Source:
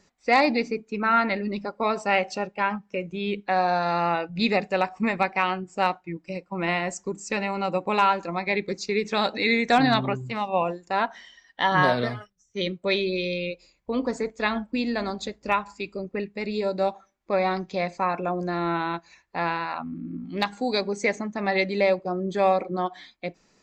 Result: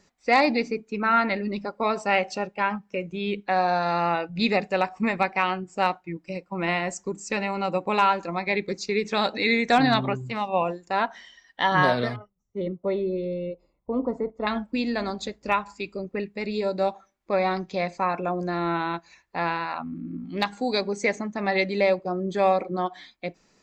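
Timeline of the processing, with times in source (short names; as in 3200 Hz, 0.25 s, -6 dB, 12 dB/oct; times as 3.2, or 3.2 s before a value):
12.16–14.47 polynomial smoothing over 65 samples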